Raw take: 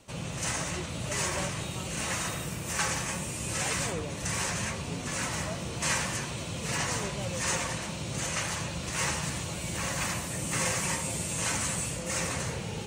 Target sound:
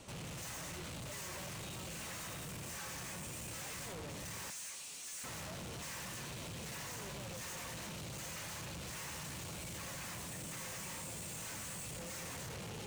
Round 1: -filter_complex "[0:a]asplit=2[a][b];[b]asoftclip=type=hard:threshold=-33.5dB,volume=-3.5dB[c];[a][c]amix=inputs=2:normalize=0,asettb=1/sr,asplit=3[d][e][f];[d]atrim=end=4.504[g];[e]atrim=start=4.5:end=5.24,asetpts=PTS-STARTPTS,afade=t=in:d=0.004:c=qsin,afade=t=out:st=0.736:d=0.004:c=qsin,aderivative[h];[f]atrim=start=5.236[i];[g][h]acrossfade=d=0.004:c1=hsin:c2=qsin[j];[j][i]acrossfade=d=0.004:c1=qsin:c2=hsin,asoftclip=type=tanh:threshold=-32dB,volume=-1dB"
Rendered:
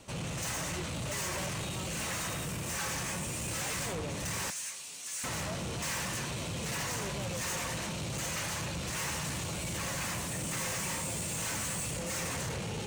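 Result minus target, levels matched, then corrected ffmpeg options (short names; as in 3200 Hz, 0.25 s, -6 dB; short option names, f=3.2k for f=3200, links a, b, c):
soft clip: distortion -5 dB
-filter_complex "[0:a]asplit=2[a][b];[b]asoftclip=type=hard:threshold=-33.5dB,volume=-3.5dB[c];[a][c]amix=inputs=2:normalize=0,asettb=1/sr,asplit=3[d][e][f];[d]atrim=end=4.504[g];[e]atrim=start=4.5:end=5.24,asetpts=PTS-STARTPTS,afade=t=in:d=0.004:c=qsin,afade=t=out:st=0.736:d=0.004:c=qsin,aderivative[h];[f]atrim=start=5.236[i];[g][h]acrossfade=d=0.004:c1=hsin:c2=qsin[j];[j][i]acrossfade=d=0.004:c1=qsin:c2=hsin,asoftclip=type=tanh:threshold=-43.5dB,volume=-1dB"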